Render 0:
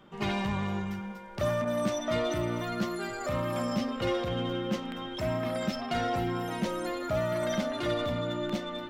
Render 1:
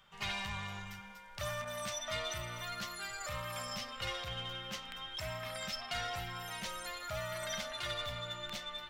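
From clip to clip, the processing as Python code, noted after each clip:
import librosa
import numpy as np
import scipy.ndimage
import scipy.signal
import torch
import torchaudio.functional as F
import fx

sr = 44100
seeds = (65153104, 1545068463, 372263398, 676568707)

y = fx.tone_stack(x, sr, knobs='10-0-10')
y = y * librosa.db_to_amplitude(2.0)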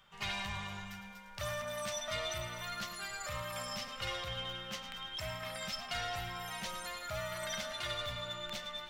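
y = fx.echo_feedback(x, sr, ms=107, feedback_pct=55, wet_db=-12)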